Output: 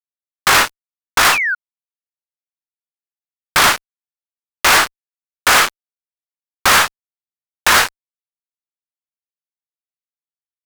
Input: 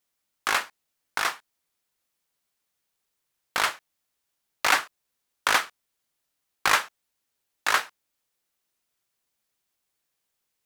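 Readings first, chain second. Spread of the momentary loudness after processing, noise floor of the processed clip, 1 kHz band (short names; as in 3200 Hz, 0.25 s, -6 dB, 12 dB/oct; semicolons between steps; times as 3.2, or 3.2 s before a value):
9 LU, under -85 dBFS, +11.5 dB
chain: fuzz box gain 38 dB, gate -44 dBFS; painted sound fall, 1.32–1.55, 1400–2800 Hz -24 dBFS; sample leveller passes 1; gain +3 dB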